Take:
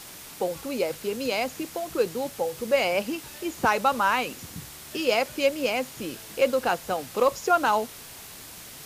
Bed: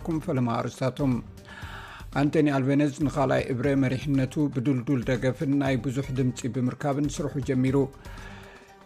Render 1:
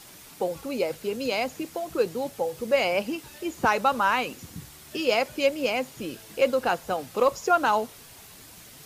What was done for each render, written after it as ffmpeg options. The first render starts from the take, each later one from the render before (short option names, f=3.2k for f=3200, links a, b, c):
-af "afftdn=nr=6:nf=-44"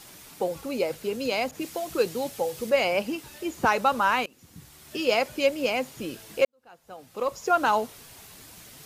-filter_complex "[0:a]asettb=1/sr,asplit=3[a][b][c];[a]atrim=end=1.514[d];[b]atrim=start=1.51:end=2.7,asetpts=PTS-STARTPTS,afade=t=in:d=0.004:c=qsin,afade=t=out:st=1.186:d=0.004:c=qsin,adynamicequalizer=threshold=0.00562:dfrequency=1900:dqfactor=0.7:tfrequency=1900:tqfactor=0.7:attack=5:release=100:ratio=0.375:range=2.5:mode=boostabove:tftype=highshelf[e];[c]atrim=start=2.696[f];[d][e]acrossfade=d=0.004:c1=hsin:c2=qsin[g];[g][f]acrossfade=d=0.004:c1=qsin:c2=hsin,asplit=3[h][i][j];[h]atrim=end=4.26,asetpts=PTS-STARTPTS,afade=t=out:st=4.256:d=0.004:c=hsin:silence=0.0707946[k];[i]atrim=start=4.26:end=6.45,asetpts=PTS-STARTPTS,afade=t=in:d=0.77:silence=0.0707946,afade=t=out:st=2.186:d=0.004:c=hsin[l];[j]atrim=start=6.45,asetpts=PTS-STARTPTS,afade=t=in:d=1.15:c=qua[m];[k][l][m]concat=n=3:v=0:a=1"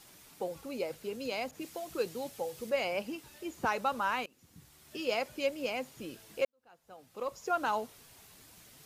-af "volume=-9dB"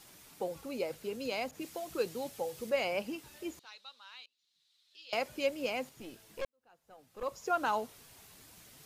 -filter_complex "[0:a]asettb=1/sr,asplit=3[a][b][c];[a]atrim=end=3.594[d];[b]atrim=start=3.59:end=5.13,asetpts=PTS-STARTPTS,afade=t=in:d=0.004:c=qsin,afade=t=out:st=1.536:d=0.004:c=qsin,bandpass=f=3.9k:t=q:w=5.5[e];[c]atrim=start=5.126[f];[d][e]acrossfade=d=0.004:c1=hsin:c2=qsin[g];[g][f]acrossfade=d=0.004:c1=qsin:c2=hsin,asettb=1/sr,asplit=3[h][i][j];[h]atrim=end=5.894[k];[i]atrim=start=5.89:end=7.23,asetpts=PTS-STARTPTS,afade=t=in:d=0.004:c=qsin,afade=t=out:st=1.336:d=0.004:c=qsin,aeval=exprs='(tanh(44.7*val(0)+0.7)-tanh(0.7))/44.7':c=same[l];[j]atrim=start=7.226[m];[k][l]acrossfade=d=0.004:c1=hsin:c2=qsin[n];[n][m]acrossfade=d=0.004:c1=qsin:c2=hsin"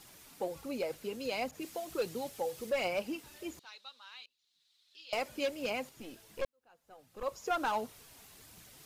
-af "asoftclip=type=hard:threshold=-27dB,aphaser=in_gain=1:out_gain=1:delay=4.4:decay=0.31:speed=1.4:type=triangular"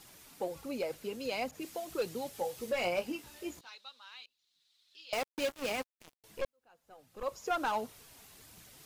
-filter_complex "[0:a]asettb=1/sr,asplit=3[a][b][c];[a]atrim=end=2.324[d];[b]atrim=start=2.32:end=3.75,asetpts=PTS-STARTPTS,afade=t=in:d=0.004:c=qsin,afade=t=out:st=1.426:d=0.004:c=qsin,asplit=2[e][f];[f]adelay=17,volume=-6.5dB[g];[e][g]amix=inputs=2:normalize=0,atrim=end_sample=63063[h];[c]atrim=start=3.746[i];[d][h]acrossfade=d=0.004:c1=hsin:c2=qsin[j];[j][i]acrossfade=d=0.004:c1=qsin:c2=hsin,asettb=1/sr,asplit=3[k][l][m];[k]atrim=end=5.134[n];[l]atrim=start=5.13:end=6.24,asetpts=PTS-STARTPTS,afade=t=in:d=0.004:c=qsin,afade=t=out:st=1.106:d=0.004:c=qsin,acrusher=bits=5:mix=0:aa=0.5[o];[m]atrim=start=6.236[p];[n][o]acrossfade=d=0.004:c1=hsin:c2=qsin[q];[q][p]acrossfade=d=0.004:c1=qsin:c2=hsin"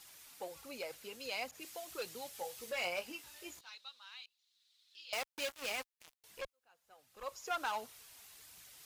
-af "highpass=f=83:p=1,equalizer=f=220:w=0.35:g=-13.5"